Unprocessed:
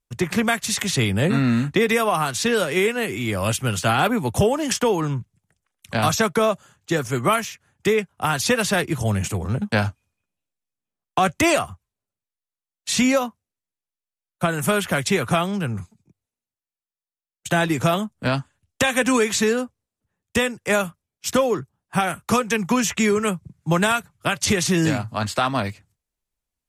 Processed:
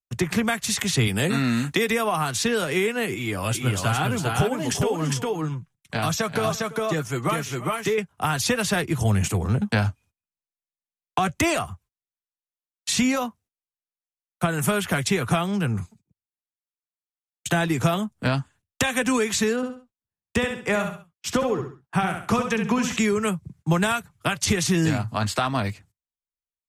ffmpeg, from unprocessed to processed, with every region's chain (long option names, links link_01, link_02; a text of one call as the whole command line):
ffmpeg -i in.wav -filter_complex "[0:a]asettb=1/sr,asplit=3[link_01][link_02][link_03];[link_01]atrim=end=1.074[link_04];[link_02]atrim=start=1.07:end=1.9,asetpts=PTS-STARTPTS,afade=type=in:duration=0.004:curve=qsin,afade=type=out:start_time=0.826:duration=0.004:curve=qsin,highpass=frequency=210:poles=1,highshelf=frequency=3600:gain=9.5[link_05];[link_03]atrim=start=1.896[link_06];[link_04][link_05]acrossfade=duration=0.004:curve1=hsin:curve2=qsin[link_07];[link_07][link_06]acrossfade=duration=0.004:curve1=qsin:curve2=hsin,asettb=1/sr,asplit=3[link_08][link_09][link_10];[link_08]atrim=end=3.144[link_11];[link_09]atrim=start=3.14:end=7.98,asetpts=PTS-STARTPTS,afade=type=in:duration=0.004:curve=qsin,afade=type=out:start_time=4.836:duration=0.004:curve=qsin,flanger=delay=5.8:depth=2.3:regen=45:speed=1:shape=triangular,aecho=1:1:337|405:0.1|0.708,atrim=end_sample=213444[link_12];[link_10]atrim=start=7.976[link_13];[link_11][link_12]acrossfade=duration=0.004:curve1=hsin:curve2=qsin[link_14];[link_14][link_13]acrossfade=duration=0.004:curve1=qsin:curve2=hsin,asettb=1/sr,asplit=3[link_15][link_16][link_17];[link_15]atrim=end=19.564[link_18];[link_16]atrim=start=19.56:end=22.97,asetpts=PTS-STARTPTS,afade=type=in:duration=0.004:curve=qsin,afade=type=out:start_time=3.406:duration=0.004:curve=qsin,lowpass=frequency=3600:poles=1,aecho=1:1:67|134|201:0.422|0.118|0.0331,atrim=end_sample=150381[link_19];[link_17]atrim=start=22.966[link_20];[link_18][link_19]acrossfade=duration=0.004:curve1=hsin:curve2=qsin[link_21];[link_21][link_20]acrossfade=duration=0.004:curve1=qsin:curve2=hsin,agate=range=-22dB:threshold=-51dB:ratio=16:detection=peak,bandreject=frequency=560:width=12,acrossover=split=150[link_22][link_23];[link_23]acompressor=threshold=-26dB:ratio=2[link_24];[link_22][link_24]amix=inputs=2:normalize=0,volume=2dB" out.wav